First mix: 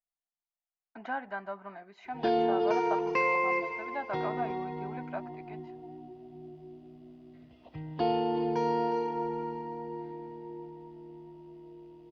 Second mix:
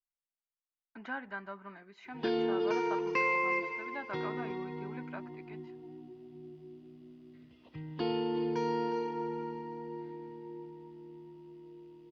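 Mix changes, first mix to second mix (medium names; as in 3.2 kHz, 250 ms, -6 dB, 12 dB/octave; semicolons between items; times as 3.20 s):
background: add high-pass 130 Hz 6 dB/octave; master: add peaking EQ 700 Hz -13.5 dB 0.59 oct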